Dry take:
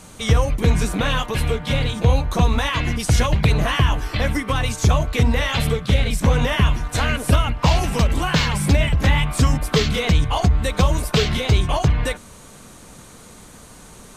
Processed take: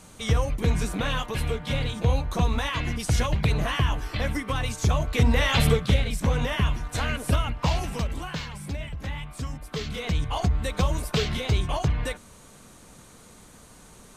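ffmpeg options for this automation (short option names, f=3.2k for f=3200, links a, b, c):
-af "volume=10dB,afade=t=in:st=4.94:d=0.77:silence=0.446684,afade=t=out:st=5.71:d=0.33:silence=0.421697,afade=t=out:st=7.56:d=0.93:silence=0.334965,afade=t=in:st=9.66:d=0.75:silence=0.334965"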